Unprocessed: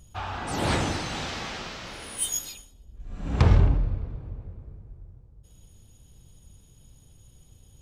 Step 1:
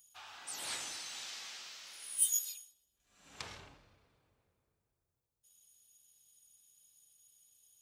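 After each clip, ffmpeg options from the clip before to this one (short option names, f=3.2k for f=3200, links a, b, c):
-af "aderivative,volume=-3dB"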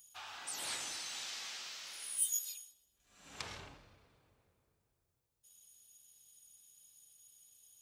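-af "acompressor=threshold=-47dB:ratio=1.5,volume=3.5dB"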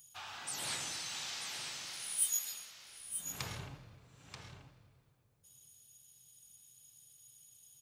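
-af "equalizer=f=130:t=o:w=0.94:g=13,aecho=1:1:934:0.376,volume=1.5dB"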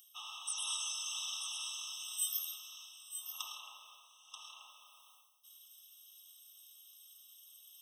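-af "highpass=f=1.2k:w=0.5412,highpass=f=1.2k:w=1.3066,areverse,acompressor=mode=upward:threshold=-47dB:ratio=2.5,areverse,afftfilt=real='re*eq(mod(floor(b*sr/1024/1300),2),0)':imag='im*eq(mod(floor(b*sr/1024/1300),2),0)':win_size=1024:overlap=0.75,volume=4.5dB"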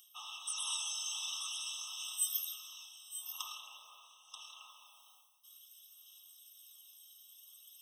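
-af "aphaser=in_gain=1:out_gain=1:delay=1.3:decay=0.32:speed=0.49:type=sinusoidal"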